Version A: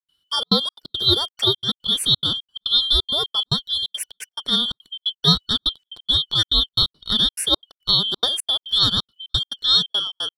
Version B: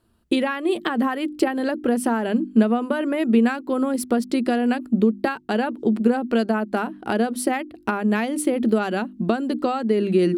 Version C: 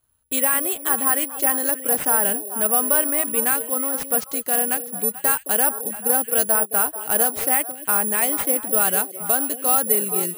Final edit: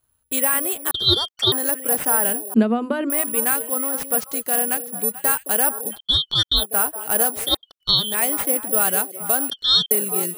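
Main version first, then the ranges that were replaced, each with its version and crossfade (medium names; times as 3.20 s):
C
0.91–1.52 s: from A
2.54–3.10 s: from B
5.94–6.61 s: from A, crossfade 0.10 s
7.45–8.08 s: from A, crossfade 0.24 s
9.50–9.91 s: from A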